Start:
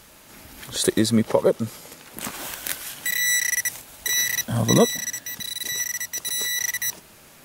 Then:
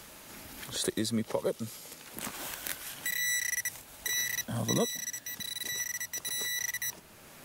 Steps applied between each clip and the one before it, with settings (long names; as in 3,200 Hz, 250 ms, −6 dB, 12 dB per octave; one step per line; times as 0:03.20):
multiband upward and downward compressor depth 40%
level −9 dB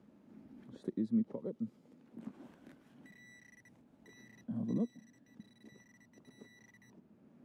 resonant band-pass 230 Hz, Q 2.8
level +1 dB